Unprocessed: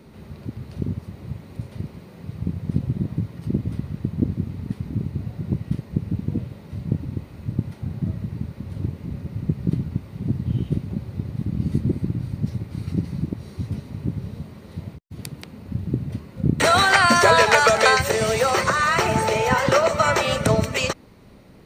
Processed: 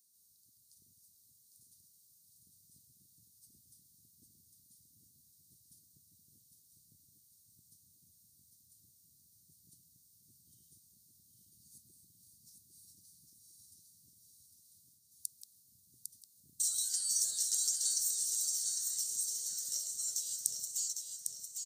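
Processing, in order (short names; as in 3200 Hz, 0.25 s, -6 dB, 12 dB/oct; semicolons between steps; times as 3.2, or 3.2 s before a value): inverse Chebyshev high-pass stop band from 2600 Hz, stop band 50 dB; feedback echo 0.803 s, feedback 45%, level -5 dB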